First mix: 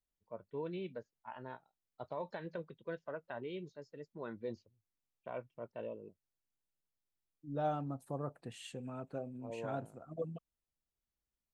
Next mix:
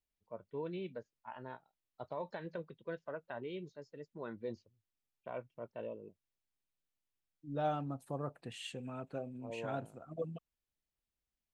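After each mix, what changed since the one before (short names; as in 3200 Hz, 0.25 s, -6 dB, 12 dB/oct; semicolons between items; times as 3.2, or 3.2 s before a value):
second voice: add bell 2800 Hz +5.5 dB 1.5 oct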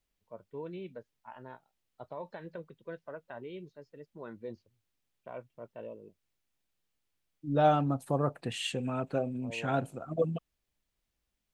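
first voice: add air absorption 110 m; second voice +10.5 dB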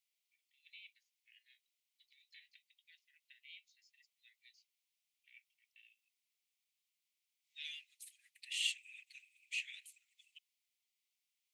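first voice: remove air absorption 110 m; master: add steep high-pass 2000 Hz 96 dB/oct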